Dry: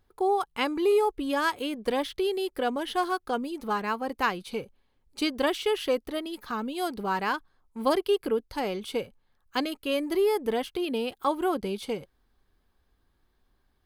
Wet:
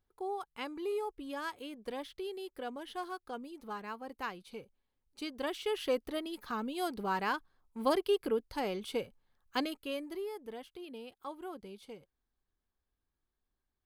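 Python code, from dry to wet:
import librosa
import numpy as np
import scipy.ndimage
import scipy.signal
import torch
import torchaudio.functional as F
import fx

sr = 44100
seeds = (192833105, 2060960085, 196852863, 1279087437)

y = fx.gain(x, sr, db=fx.line((5.26, -13.0), (5.94, -5.0), (9.64, -5.0), (10.3, -17.0)))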